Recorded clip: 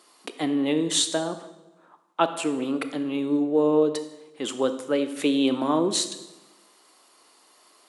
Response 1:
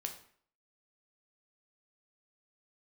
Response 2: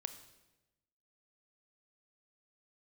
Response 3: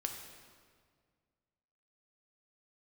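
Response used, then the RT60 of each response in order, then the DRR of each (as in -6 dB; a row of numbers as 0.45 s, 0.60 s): 2; 0.55 s, 1.0 s, 1.9 s; 4.0 dB, 10.0 dB, 3.0 dB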